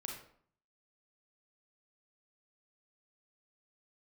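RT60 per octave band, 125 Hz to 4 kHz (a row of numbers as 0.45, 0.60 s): 0.75, 0.65, 0.55, 0.60, 0.50, 0.40 s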